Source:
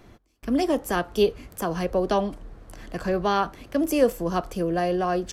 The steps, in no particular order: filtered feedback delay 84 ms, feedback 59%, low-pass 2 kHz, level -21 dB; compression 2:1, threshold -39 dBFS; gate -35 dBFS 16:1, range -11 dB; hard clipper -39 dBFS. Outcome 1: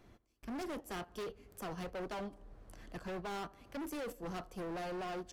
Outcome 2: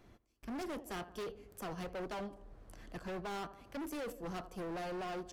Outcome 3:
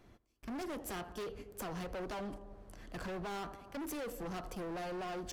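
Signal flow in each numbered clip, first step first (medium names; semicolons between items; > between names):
filtered feedback delay > compression > gate > hard clipper; compression > gate > filtered feedback delay > hard clipper; gate > filtered feedback delay > compression > hard clipper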